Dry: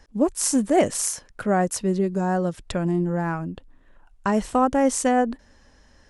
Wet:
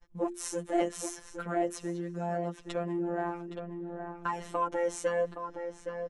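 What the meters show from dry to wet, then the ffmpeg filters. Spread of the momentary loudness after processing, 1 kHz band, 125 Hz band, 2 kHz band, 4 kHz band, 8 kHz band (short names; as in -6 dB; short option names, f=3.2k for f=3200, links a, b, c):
9 LU, -9.5 dB, -13.0 dB, -9.0 dB, -11.5 dB, -15.0 dB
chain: -filter_complex "[0:a]flanger=delay=6.7:depth=2.1:regen=0:speed=0.43:shape=sinusoidal,equalizer=f=10k:t=o:w=1.7:g=-9.5,asplit=2[a][b];[b]adelay=817,lowpass=f=2.5k:p=1,volume=-10dB,asplit=2[c][d];[d]adelay=817,lowpass=f=2.5k:p=1,volume=0.4,asplit=2[e][f];[f]adelay=817,lowpass=f=2.5k:p=1,volume=0.4,asplit=2[g][h];[h]adelay=817,lowpass=f=2.5k:p=1,volume=0.4[i];[a][c][e][g][i]amix=inputs=5:normalize=0,afftfilt=real='hypot(re,im)*cos(PI*b)':imag='0':win_size=1024:overlap=0.75,acrossover=split=260|3000[j][k][l];[j]acompressor=threshold=-55dB:ratio=2[m];[m][k][l]amix=inputs=3:normalize=0,bandreject=f=4.7k:w=7.8,agate=range=-33dB:threshold=-53dB:ratio=3:detection=peak,asplit=2[n][o];[o]acompressor=threshold=-43dB:ratio=6,volume=0dB[p];[n][p]amix=inputs=2:normalize=0,asoftclip=type=tanh:threshold=-13dB,bandreject=f=50:t=h:w=6,bandreject=f=100:t=h:w=6,bandreject=f=150:t=h:w=6,bandreject=f=200:t=h:w=6,bandreject=f=250:t=h:w=6,bandreject=f=300:t=h:w=6,bandreject=f=350:t=h:w=6,volume=-2dB"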